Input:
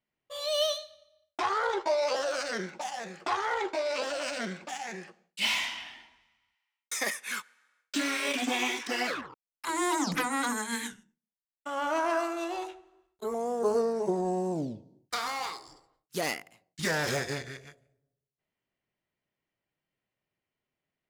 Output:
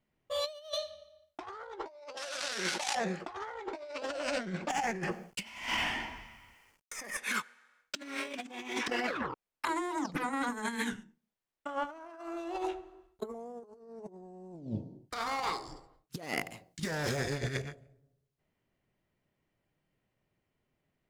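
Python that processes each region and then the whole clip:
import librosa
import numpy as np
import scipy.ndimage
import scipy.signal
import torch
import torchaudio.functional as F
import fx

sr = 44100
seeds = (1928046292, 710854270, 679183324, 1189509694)

y = fx.chain(x, sr, fx.dead_time(dead_ms=0.18),
    fx.weighting(curve='ITU-R 468'),
    fx.env_flatten(amount_pct=50), at=(2.17, 2.95))
y = fx.chain(y, sr, fx.law_mismatch(coded='mu'),
    fx.peak_eq(hz=3800.0, db=-12.0, octaves=0.29),
    fx.over_compress(threshold_db=-38.0, ratio=-0.5), at=(4.7, 7.17))
y = fx.chain(y, sr, fx.bass_treble(bass_db=-5, treble_db=-4),
    fx.over_compress(threshold_db=-34.0, ratio=-0.5), at=(8.8, 11.85))
y = fx.chain(y, sr, fx.over_compress(threshold_db=-38.0, ratio=-1.0),
    fx.high_shelf(hz=4200.0, db=6.5), at=(16.37, 17.62))
y = fx.tilt_eq(y, sr, slope=-2.0)
y = fx.over_compress(y, sr, threshold_db=-36.0, ratio=-0.5)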